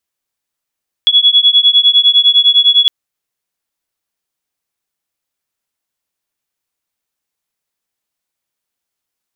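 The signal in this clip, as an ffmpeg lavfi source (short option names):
-f lavfi -i "aevalsrc='0.355*(sin(2*PI*3370*t)+sin(2*PI*3379.9*t))':d=1.81:s=44100"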